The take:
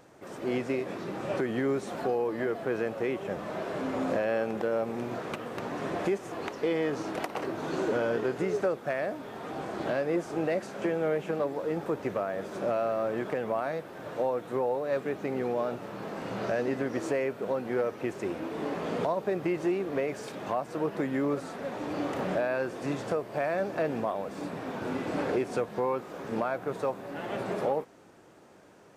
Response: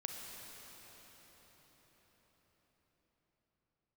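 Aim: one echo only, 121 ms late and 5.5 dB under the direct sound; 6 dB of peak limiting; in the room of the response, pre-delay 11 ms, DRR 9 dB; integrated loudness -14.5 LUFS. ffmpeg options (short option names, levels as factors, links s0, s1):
-filter_complex "[0:a]alimiter=limit=0.075:level=0:latency=1,aecho=1:1:121:0.531,asplit=2[s0][s1];[1:a]atrim=start_sample=2205,adelay=11[s2];[s1][s2]afir=irnorm=-1:irlink=0,volume=0.376[s3];[s0][s3]amix=inputs=2:normalize=0,volume=7.08"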